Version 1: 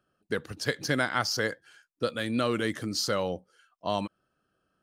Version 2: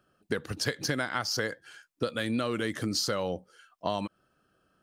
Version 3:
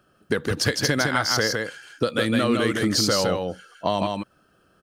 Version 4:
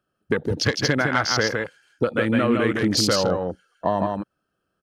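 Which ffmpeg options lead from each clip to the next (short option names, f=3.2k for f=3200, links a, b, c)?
-af "acompressor=threshold=-32dB:ratio=6,volume=5.5dB"
-filter_complex "[0:a]asplit=2[a][b];[b]asoftclip=type=tanh:threshold=-23dB,volume=-11dB[c];[a][c]amix=inputs=2:normalize=0,aecho=1:1:160:0.668,volume=5.5dB"
-af "afwtdn=0.0355,volume=1.5dB"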